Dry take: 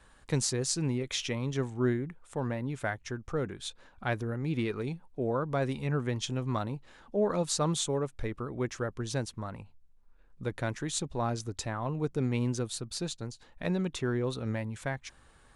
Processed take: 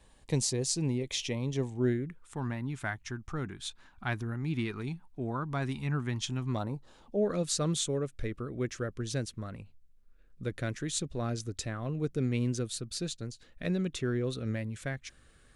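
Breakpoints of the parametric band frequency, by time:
parametric band −14.5 dB 0.58 octaves
0:01.72 1,400 Hz
0:02.42 510 Hz
0:06.47 510 Hz
0:06.67 3,400 Hz
0:07.30 900 Hz

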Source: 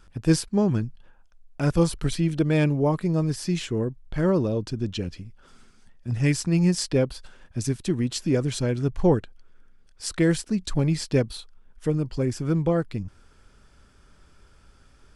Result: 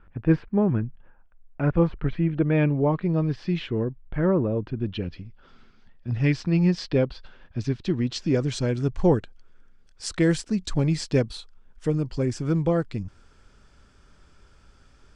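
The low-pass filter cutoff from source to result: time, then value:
low-pass filter 24 dB per octave
0:02.30 2,300 Hz
0:03.18 3,600 Hz
0:03.78 3,600 Hz
0:04.41 2,000 Hz
0:05.20 4,400 Hz
0:07.69 4,400 Hz
0:08.78 8,300 Hz

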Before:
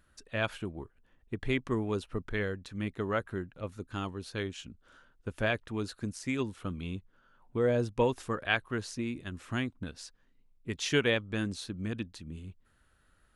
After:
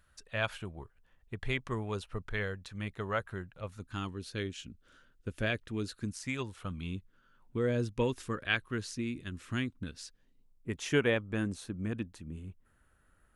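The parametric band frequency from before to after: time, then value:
parametric band −9.5 dB 1.1 octaves
0:03.68 290 Hz
0:04.24 880 Hz
0:05.91 880 Hz
0:06.55 210 Hz
0:06.94 740 Hz
0:10.02 740 Hz
0:10.72 4,200 Hz

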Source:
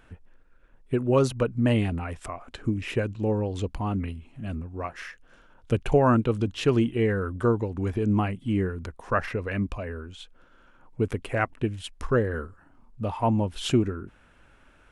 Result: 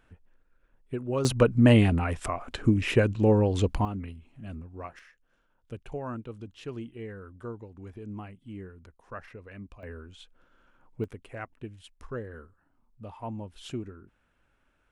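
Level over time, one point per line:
−8 dB
from 0:01.25 +4.5 dB
from 0:03.85 −7 dB
from 0:04.99 −16 dB
from 0:09.83 −6.5 dB
from 0:11.04 −13.5 dB

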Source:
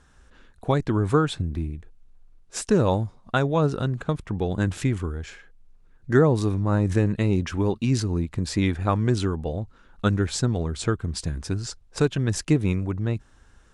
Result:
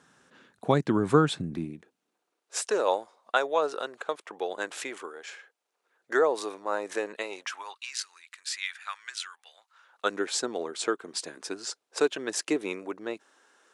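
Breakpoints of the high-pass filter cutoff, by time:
high-pass filter 24 dB per octave
0:01.54 150 Hz
0:02.58 460 Hz
0:07.16 460 Hz
0:07.99 1,500 Hz
0:09.53 1,500 Hz
0:10.15 350 Hz

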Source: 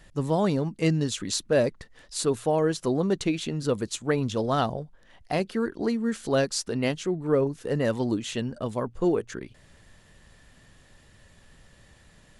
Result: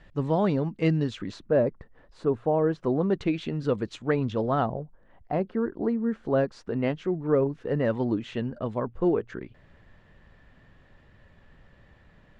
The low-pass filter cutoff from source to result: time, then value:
0:01.00 2,900 Hz
0:01.59 1,200 Hz
0:02.49 1,200 Hz
0:03.36 2,700 Hz
0:04.26 2,700 Hz
0:04.82 1,200 Hz
0:06.19 1,200 Hz
0:07.15 2,200 Hz

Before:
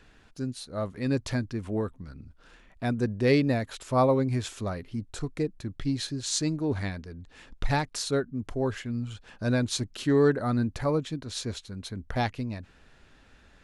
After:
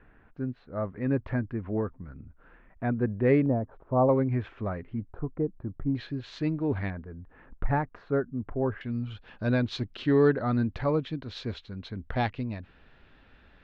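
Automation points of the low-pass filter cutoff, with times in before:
low-pass filter 24 dB per octave
2,000 Hz
from 0:03.46 1,000 Hz
from 0:04.09 2,200 Hz
from 0:05.13 1,200 Hz
from 0:05.95 2,800 Hz
from 0:06.90 1,700 Hz
from 0:08.81 3,700 Hz

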